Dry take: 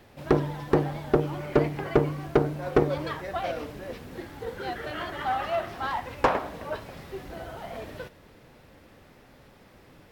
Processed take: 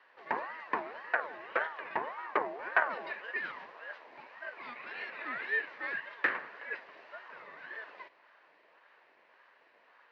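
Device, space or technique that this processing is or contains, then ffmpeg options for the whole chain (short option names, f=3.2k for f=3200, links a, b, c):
voice changer toy: -filter_complex "[0:a]asettb=1/sr,asplit=3[a][b][c];[a]atrim=end=2.174[d];[b]atrim=start=2.17:end=3.12,asetpts=PTS-STARTPTS,afade=t=in:d=0.004:c=qsin,afade=t=out:st=0.946:d=0.004:c=qsin,lowshelf=f=220:g=8[e];[c]atrim=start=3.116[f];[d][e]acrossfade=d=0.004:c1=hsin:c2=qsin[g];[g][f]acrossfade=d=0.004:c1=qsin:c2=hsin,aeval=exprs='val(0)*sin(2*PI*800*n/s+800*0.4/1.8*sin(2*PI*1.8*n/s))':c=same,highpass=590,equalizer=f=780:t=q:w=4:g=-7,equalizer=f=1.3k:t=q:w=4:g=-7,equalizer=f=1.8k:t=q:w=4:g=7,equalizer=f=3.4k:t=q:w=4:g=-7,lowpass=f=3.8k:w=0.5412,lowpass=f=3.8k:w=1.3066,volume=-3.5dB"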